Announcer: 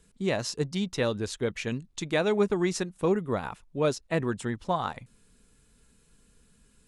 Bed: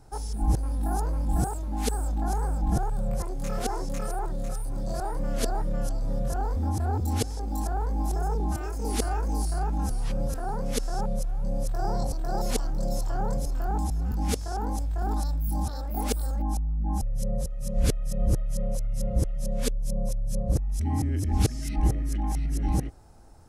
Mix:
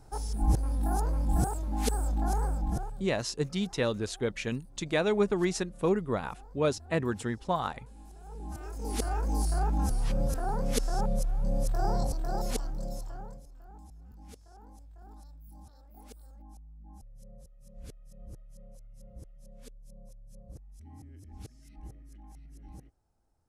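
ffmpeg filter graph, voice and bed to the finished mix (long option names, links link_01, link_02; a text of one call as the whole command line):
ffmpeg -i stem1.wav -i stem2.wav -filter_complex "[0:a]adelay=2800,volume=-1.5dB[link_01];[1:a]volume=21dB,afade=type=out:start_time=2.4:duration=0.69:silence=0.0841395,afade=type=in:start_time=8.22:duration=1.3:silence=0.0749894,afade=type=out:start_time=11.84:duration=1.59:silence=0.0749894[link_02];[link_01][link_02]amix=inputs=2:normalize=0" out.wav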